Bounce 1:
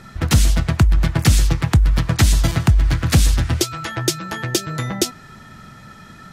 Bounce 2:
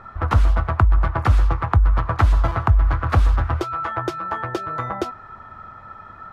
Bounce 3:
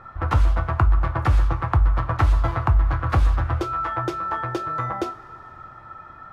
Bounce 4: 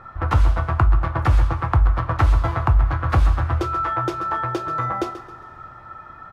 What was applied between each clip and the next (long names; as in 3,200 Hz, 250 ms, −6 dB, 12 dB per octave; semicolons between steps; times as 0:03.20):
drawn EQ curve 100 Hz 0 dB, 150 Hz −13 dB, 1,200 Hz +10 dB, 1,800 Hz −4 dB, 7,400 Hz −25 dB; level −1 dB
coupled-rooms reverb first 0.26 s, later 3.5 s, from −22 dB, DRR 6 dB; level −3 dB
repeating echo 134 ms, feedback 35%, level −13 dB; level +1.5 dB